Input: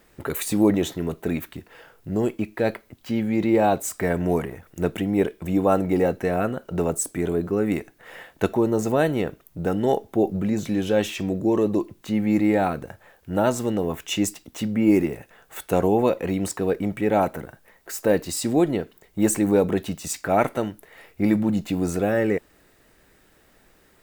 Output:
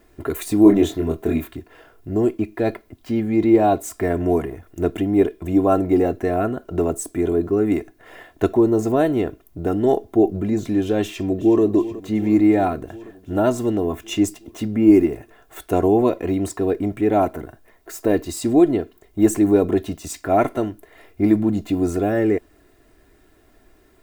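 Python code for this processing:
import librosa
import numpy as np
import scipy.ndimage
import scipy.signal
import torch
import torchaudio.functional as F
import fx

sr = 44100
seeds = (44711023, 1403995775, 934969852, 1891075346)

y = fx.doubler(x, sr, ms=25.0, db=-3.0, at=(0.63, 1.55))
y = fx.echo_throw(y, sr, start_s=11.01, length_s=0.61, ms=370, feedback_pct=75, wet_db=-15.5)
y = fx.tilt_shelf(y, sr, db=4.0, hz=820.0)
y = y + 0.58 * np.pad(y, (int(2.9 * sr / 1000.0), 0))[:len(y)]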